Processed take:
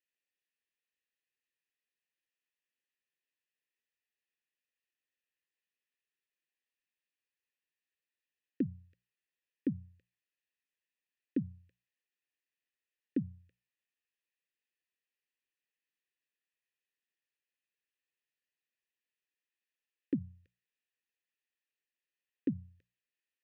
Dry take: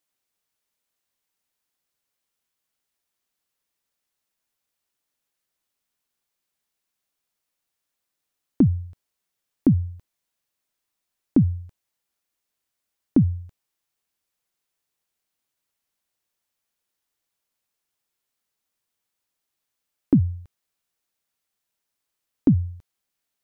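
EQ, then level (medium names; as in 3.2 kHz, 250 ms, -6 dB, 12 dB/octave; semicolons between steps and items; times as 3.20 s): vowel filter e; Butterworth band-stop 720 Hz, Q 0.6; hum notches 60/120/180 Hz; +6.5 dB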